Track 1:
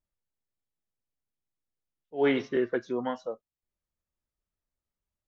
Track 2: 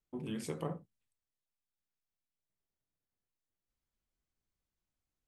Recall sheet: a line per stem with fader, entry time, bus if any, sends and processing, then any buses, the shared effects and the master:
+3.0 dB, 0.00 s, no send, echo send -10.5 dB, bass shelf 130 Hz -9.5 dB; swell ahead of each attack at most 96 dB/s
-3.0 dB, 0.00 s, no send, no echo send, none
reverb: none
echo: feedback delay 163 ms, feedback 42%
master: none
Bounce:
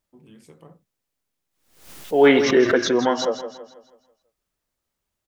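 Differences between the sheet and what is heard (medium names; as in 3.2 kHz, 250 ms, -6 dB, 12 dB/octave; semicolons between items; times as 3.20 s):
stem 1 +3.0 dB -> +11.5 dB; stem 2 -3.0 dB -> -9.5 dB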